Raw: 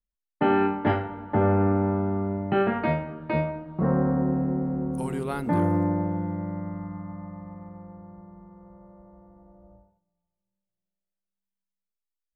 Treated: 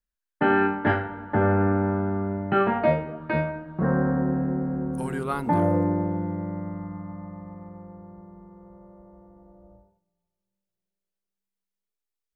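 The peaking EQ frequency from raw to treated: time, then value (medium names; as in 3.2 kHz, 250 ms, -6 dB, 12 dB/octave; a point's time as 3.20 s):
peaking EQ +11 dB 0.3 oct
2.50 s 1.6 kHz
3.06 s 380 Hz
3.30 s 1.6 kHz
5.16 s 1.6 kHz
5.88 s 410 Hz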